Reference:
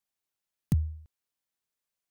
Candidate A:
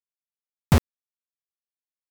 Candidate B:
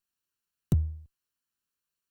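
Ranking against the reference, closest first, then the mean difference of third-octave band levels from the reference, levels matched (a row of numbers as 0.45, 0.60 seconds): B, A; 2.5, 7.5 decibels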